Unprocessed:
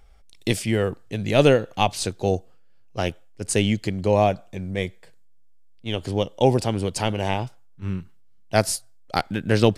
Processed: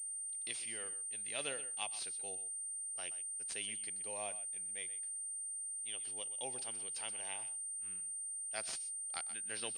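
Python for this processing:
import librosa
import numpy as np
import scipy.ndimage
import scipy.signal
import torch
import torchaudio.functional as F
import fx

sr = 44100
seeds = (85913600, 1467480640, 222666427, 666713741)

y = np.diff(x, prepend=0.0)
y = y + 10.0 ** (-13.5 / 20.0) * np.pad(y, (int(126 * sr / 1000.0), 0))[:len(y)]
y = fx.pwm(y, sr, carrier_hz=8800.0)
y = y * librosa.db_to_amplitude(-6.5)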